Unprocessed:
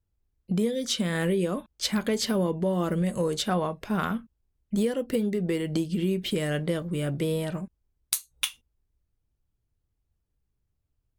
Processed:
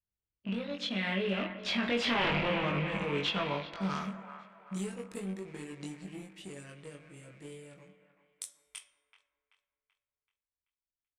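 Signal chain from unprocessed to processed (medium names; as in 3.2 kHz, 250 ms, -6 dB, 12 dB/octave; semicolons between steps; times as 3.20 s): rattle on loud lows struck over -37 dBFS, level -31 dBFS; Doppler pass-by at 2.25 s, 31 m/s, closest 3.2 m; de-hum 365.6 Hz, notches 31; on a send at -10 dB: reverberation RT60 1.6 s, pre-delay 5 ms; on the sum: waveshaping leveller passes 1; in parallel at +1 dB: compressor with a negative ratio -41 dBFS, ratio -1; on the sum: dynamic bell 410 Hz, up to -5 dB, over -42 dBFS, Q 1; wavefolder -28 dBFS; bass shelf 120 Hz -7 dB; doubling 21 ms -2 dB; feedback echo behind a band-pass 383 ms, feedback 44%, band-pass 1.2 kHz, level -10 dB; low-pass sweep 2.9 kHz -> 8.9 kHz, 3.35–4.37 s; trim +1 dB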